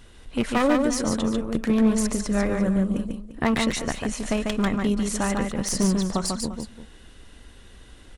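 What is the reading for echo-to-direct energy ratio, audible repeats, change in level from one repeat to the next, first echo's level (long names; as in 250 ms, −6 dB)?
−3.5 dB, 2, repeats not evenly spaced, −4.0 dB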